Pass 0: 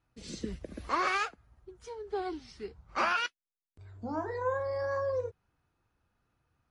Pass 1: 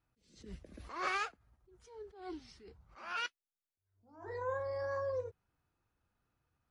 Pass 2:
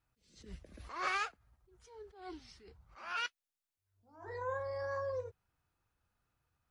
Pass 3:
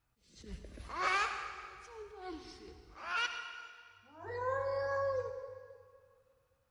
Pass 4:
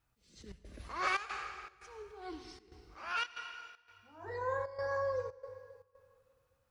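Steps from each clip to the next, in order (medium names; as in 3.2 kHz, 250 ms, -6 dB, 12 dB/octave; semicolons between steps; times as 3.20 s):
attacks held to a fixed rise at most 100 dB/s; trim -5 dB
peaking EQ 280 Hz -5 dB 1.9 oct; trim +1 dB
reverberation RT60 2.1 s, pre-delay 60 ms, DRR 6.5 dB; trim +2.5 dB
trance gate "xxxx.xxxx.xxx.xx" 116 bpm -12 dB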